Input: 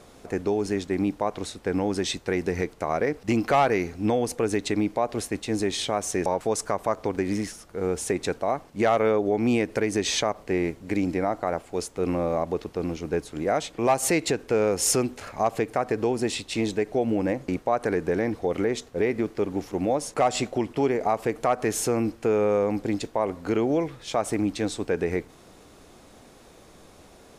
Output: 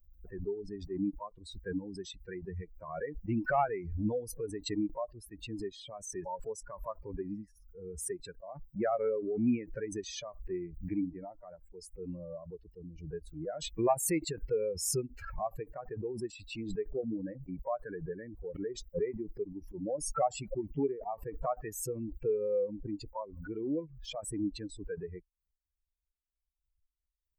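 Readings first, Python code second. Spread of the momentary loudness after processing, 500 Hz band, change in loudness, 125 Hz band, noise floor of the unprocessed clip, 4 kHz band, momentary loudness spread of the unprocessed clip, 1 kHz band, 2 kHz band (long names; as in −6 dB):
13 LU, −11.0 dB, −10.5 dB, −9.5 dB, −52 dBFS, −13.0 dB, 6 LU, −11.5 dB, −14.0 dB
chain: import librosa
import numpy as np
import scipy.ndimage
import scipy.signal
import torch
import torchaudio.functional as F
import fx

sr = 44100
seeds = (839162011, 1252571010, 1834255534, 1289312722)

y = fx.bin_expand(x, sr, power=3.0)
y = fx.peak_eq(y, sr, hz=3600.0, db=-10.0, octaves=2.2)
y = fx.pre_swell(y, sr, db_per_s=58.0)
y = F.gain(torch.from_numpy(y), -2.5).numpy()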